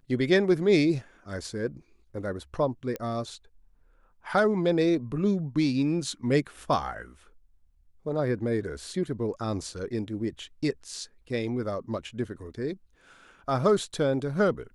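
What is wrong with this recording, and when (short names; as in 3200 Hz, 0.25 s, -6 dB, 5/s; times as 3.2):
2.96 pop -19 dBFS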